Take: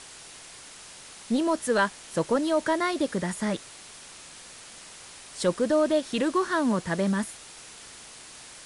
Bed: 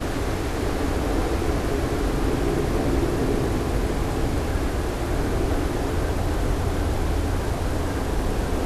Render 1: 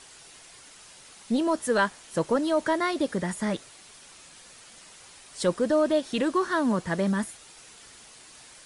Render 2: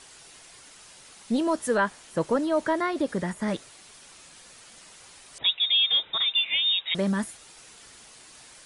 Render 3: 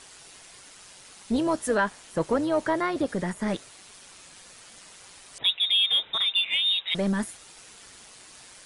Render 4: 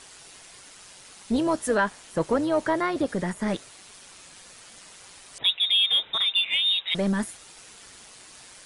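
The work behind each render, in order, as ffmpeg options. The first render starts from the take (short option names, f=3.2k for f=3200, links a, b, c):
-af "afftdn=nr=6:nf=-47"
-filter_complex "[0:a]asettb=1/sr,asplit=3[a][b][c];[a]atrim=end=1.744[d];[b]atrim=start=1.74:end=3.48,asetpts=PTS-STARTPTS,afade=t=in:d=0.004:c=qsin,afade=t=out:st=1.736:d=0.004:c=qsin,acrossover=split=2500[e][f];[f]acompressor=threshold=-44dB:ratio=4:attack=1:release=60[g];[e][g]amix=inputs=2:normalize=0[h];[c]atrim=start=3.476[i];[d][h]acrossfade=d=0.004:c1=hsin:c2=qsin[j];[j][i]acrossfade=d=0.004:c1=qsin:c2=hsin,asettb=1/sr,asplit=3[k][l][m];[k]atrim=end=5.384[n];[l]atrim=start=5.38:end=6.95,asetpts=PTS-STARTPTS,afade=t=in:d=0.004:c=qsin,afade=t=out:st=1.566:d=0.004:c=qsin,lowpass=f=3.3k:t=q:w=0.5098,lowpass=f=3.3k:t=q:w=0.6013,lowpass=f=3.3k:t=q:w=0.9,lowpass=f=3.3k:t=q:w=2.563,afreqshift=-3900[o];[m]atrim=start=6.946[p];[n][o]acrossfade=d=0.004:c1=hsin:c2=qsin[q];[q][p]acrossfade=d=0.004:c1=qsin:c2=hsin"
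-filter_complex "[0:a]tremolo=f=190:d=0.4,asplit=2[a][b];[b]asoftclip=type=tanh:threshold=-26dB,volume=-9dB[c];[a][c]amix=inputs=2:normalize=0"
-af "volume=1dB"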